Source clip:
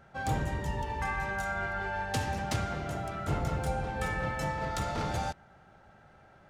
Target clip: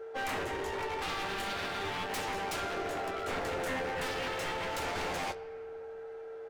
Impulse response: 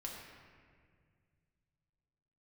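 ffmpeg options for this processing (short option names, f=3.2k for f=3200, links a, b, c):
-filter_complex "[0:a]aeval=exprs='val(0)+0.00316*sin(2*PI*450*n/s)':c=same,lowshelf=f=270:t=q:w=3:g=-12.5,aeval=exprs='0.0251*(abs(mod(val(0)/0.0251+3,4)-2)-1)':c=same,aecho=1:1:11|23:0.355|0.237,asplit=2[a][b];[1:a]atrim=start_sample=2205,lowpass=6.6k[c];[b][c]afir=irnorm=-1:irlink=0,volume=-9.5dB[d];[a][d]amix=inputs=2:normalize=0"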